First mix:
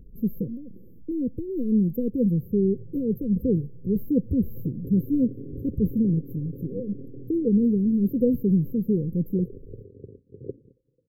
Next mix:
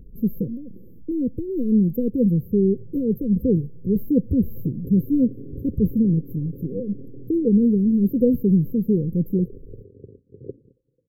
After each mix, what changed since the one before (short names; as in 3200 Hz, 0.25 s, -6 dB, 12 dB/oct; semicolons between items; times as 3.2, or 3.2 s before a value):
speech +3.5 dB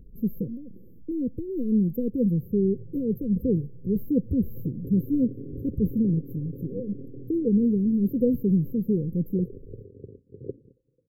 speech -4.5 dB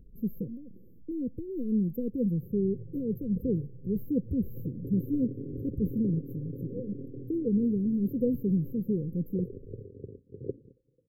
speech -5.0 dB